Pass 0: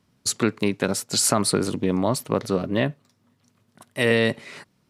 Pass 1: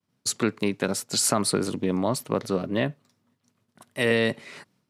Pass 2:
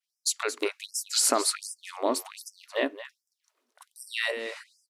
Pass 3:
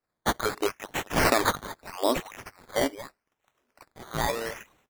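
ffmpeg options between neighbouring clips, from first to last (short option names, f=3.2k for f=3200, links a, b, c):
-af "agate=range=-33dB:threshold=-59dB:ratio=3:detection=peak,highpass=99,volume=-2.5dB"
-af "aecho=1:1:224:0.251,afftfilt=real='re*gte(b*sr/1024,230*pow(5000/230,0.5+0.5*sin(2*PI*1.3*pts/sr)))':imag='im*gte(b*sr/1024,230*pow(5000/230,0.5+0.5*sin(2*PI*1.3*pts/sr)))':win_size=1024:overlap=0.75"
-af "acrusher=samples=13:mix=1:aa=0.000001:lfo=1:lforange=7.8:lforate=0.79,volume=2dB"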